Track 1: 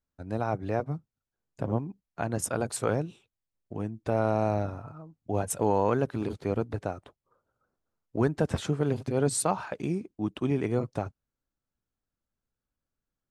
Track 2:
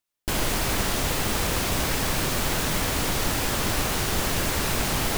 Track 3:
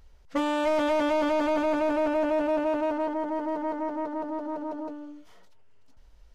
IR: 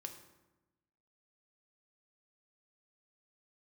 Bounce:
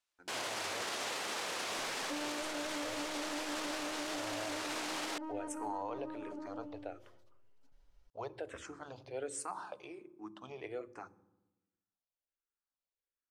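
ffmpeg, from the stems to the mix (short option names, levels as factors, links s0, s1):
-filter_complex "[0:a]equalizer=f=150:t=o:w=0.77:g=-8.5,asplit=2[s0][s1];[s1]afreqshift=-1.3[s2];[s0][s2]amix=inputs=2:normalize=1,volume=0.422,asplit=2[s3][s4];[s4]volume=0.422[s5];[1:a]volume=0.944[s6];[2:a]aecho=1:1:7.1:1,adelay=1750,volume=0.188[s7];[s3][s6]amix=inputs=2:normalize=0,highpass=470,lowpass=7300,alimiter=level_in=1.5:limit=0.0631:level=0:latency=1,volume=0.668,volume=1[s8];[3:a]atrim=start_sample=2205[s9];[s5][s9]afir=irnorm=-1:irlink=0[s10];[s7][s8][s10]amix=inputs=3:normalize=0,alimiter=level_in=2:limit=0.0631:level=0:latency=1,volume=0.501"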